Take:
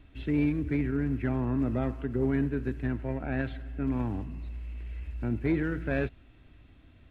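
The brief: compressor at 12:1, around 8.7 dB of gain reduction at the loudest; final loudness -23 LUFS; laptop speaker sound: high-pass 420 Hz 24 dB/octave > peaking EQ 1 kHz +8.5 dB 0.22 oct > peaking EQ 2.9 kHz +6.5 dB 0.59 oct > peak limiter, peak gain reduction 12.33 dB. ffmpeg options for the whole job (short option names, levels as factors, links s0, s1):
-af "acompressor=threshold=0.0282:ratio=12,highpass=f=420:w=0.5412,highpass=f=420:w=1.3066,equalizer=f=1000:t=o:w=0.22:g=8.5,equalizer=f=2900:t=o:w=0.59:g=6.5,volume=20,alimiter=limit=0.224:level=0:latency=1"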